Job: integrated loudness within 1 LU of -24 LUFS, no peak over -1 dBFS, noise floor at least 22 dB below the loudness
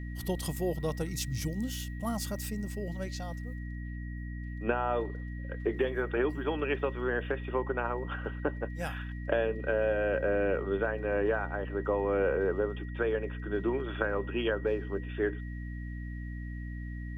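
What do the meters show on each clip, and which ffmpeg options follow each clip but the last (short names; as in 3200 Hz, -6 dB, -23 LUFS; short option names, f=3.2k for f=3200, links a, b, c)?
hum 60 Hz; harmonics up to 300 Hz; hum level -36 dBFS; steady tone 1900 Hz; tone level -50 dBFS; loudness -33.0 LUFS; peak -14.0 dBFS; loudness target -24.0 LUFS
-> -af "bandreject=f=60:t=h:w=4,bandreject=f=120:t=h:w=4,bandreject=f=180:t=h:w=4,bandreject=f=240:t=h:w=4,bandreject=f=300:t=h:w=4"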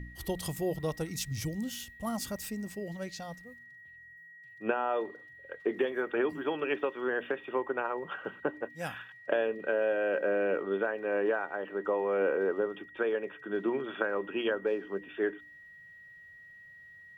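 hum none; steady tone 1900 Hz; tone level -50 dBFS
-> -af "bandreject=f=1.9k:w=30"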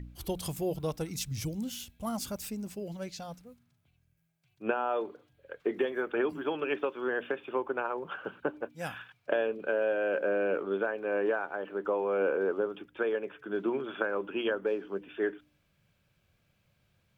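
steady tone none; loudness -33.0 LUFS; peak -14.5 dBFS; loudness target -24.0 LUFS
-> -af "volume=9dB"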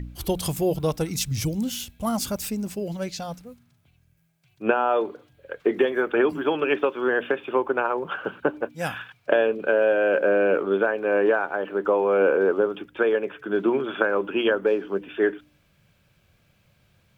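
loudness -24.0 LUFS; peak -5.5 dBFS; noise floor -64 dBFS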